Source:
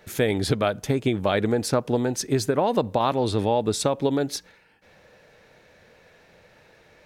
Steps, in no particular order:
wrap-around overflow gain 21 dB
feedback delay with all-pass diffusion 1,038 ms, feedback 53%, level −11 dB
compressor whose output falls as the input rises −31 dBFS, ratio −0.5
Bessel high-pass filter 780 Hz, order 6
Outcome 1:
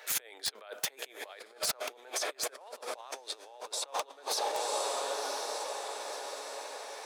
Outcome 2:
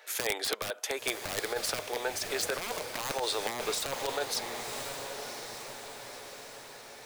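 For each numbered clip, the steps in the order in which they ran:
feedback delay with all-pass diffusion, then compressor whose output falls as the input rises, then Bessel high-pass filter, then wrap-around overflow
Bessel high-pass filter, then wrap-around overflow, then feedback delay with all-pass diffusion, then compressor whose output falls as the input rises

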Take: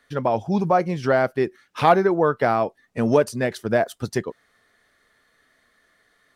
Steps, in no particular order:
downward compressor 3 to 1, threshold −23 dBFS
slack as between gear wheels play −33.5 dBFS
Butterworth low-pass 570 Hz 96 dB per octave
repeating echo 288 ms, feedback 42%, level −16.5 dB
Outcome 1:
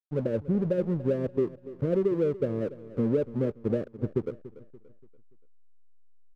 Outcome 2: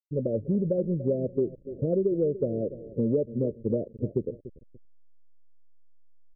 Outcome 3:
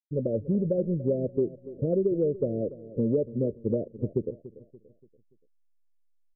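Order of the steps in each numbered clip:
Butterworth low-pass, then downward compressor, then slack as between gear wheels, then repeating echo
repeating echo, then slack as between gear wheels, then Butterworth low-pass, then downward compressor
slack as between gear wheels, then Butterworth low-pass, then downward compressor, then repeating echo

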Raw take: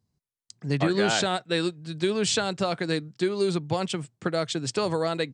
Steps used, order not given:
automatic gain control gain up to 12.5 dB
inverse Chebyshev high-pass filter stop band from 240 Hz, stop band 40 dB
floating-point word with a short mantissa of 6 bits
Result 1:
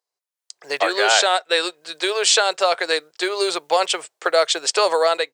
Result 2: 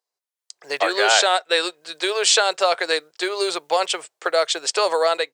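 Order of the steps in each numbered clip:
floating-point word with a short mantissa, then inverse Chebyshev high-pass filter, then automatic gain control
floating-point word with a short mantissa, then automatic gain control, then inverse Chebyshev high-pass filter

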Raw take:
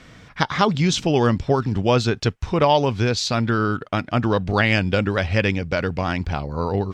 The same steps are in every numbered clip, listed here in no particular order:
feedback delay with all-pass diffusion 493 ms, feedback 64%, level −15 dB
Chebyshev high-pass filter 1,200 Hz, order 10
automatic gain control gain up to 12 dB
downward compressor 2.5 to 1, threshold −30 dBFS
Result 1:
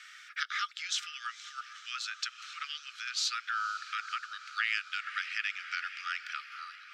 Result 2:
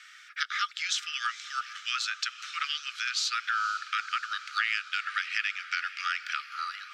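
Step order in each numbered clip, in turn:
automatic gain control, then feedback delay with all-pass diffusion, then downward compressor, then Chebyshev high-pass filter
automatic gain control, then Chebyshev high-pass filter, then downward compressor, then feedback delay with all-pass diffusion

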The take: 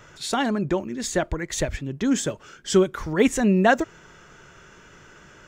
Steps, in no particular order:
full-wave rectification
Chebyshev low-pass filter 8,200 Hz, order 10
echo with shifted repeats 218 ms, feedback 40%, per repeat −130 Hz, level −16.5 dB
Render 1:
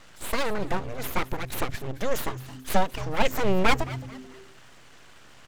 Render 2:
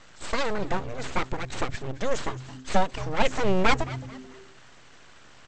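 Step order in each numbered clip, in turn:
Chebyshev low-pass filter, then full-wave rectification, then echo with shifted repeats
full-wave rectification, then Chebyshev low-pass filter, then echo with shifted repeats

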